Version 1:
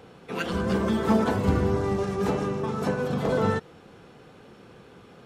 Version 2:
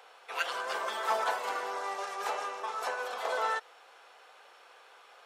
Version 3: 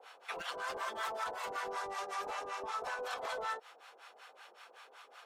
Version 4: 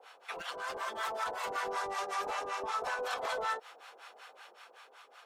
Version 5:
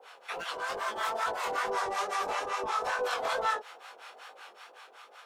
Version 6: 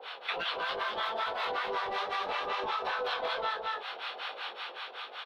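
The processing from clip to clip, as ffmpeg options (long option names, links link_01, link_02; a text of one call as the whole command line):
ffmpeg -i in.wav -af "highpass=frequency=670:width=0.5412,highpass=frequency=670:width=1.3066" out.wav
ffmpeg -i in.wav -filter_complex "[0:a]acompressor=threshold=-34dB:ratio=10,asoftclip=type=hard:threshold=-32.5dB,acrossover=split=730[link_01][link_02];[link_01]aeval=exprs='val(0)*(1-1/2+1/2*cos(2*PI*5.3*n/s))':channel_layout=same[link_03];[link_02]aeval=exprs='val(0)*(1-1/2-1/2*cos(2*PI*5.3*n/s))':channel_layout=same[link_04];[link_03][link_04]amix=inputs=2:normalize=0,volume=4.5dB" out.wav
ffmpeg -i in.wav -af "dynaudnorm=framelen=200:gausssize=11:maxgain=4dB" out.wav
ffmpeg -i in.wav -af "flanger=delay=18:depth=6.3:speed=2.3,volume=7dB" out.wav
ffmpeg -i in.wav -af "highshelf=frequency=5300:width_type=q:width=3:gain=-13,aecho=1:1:211:0.501,acompressor=threshold=-38dB:ratio=6,volume=7dB" out.wav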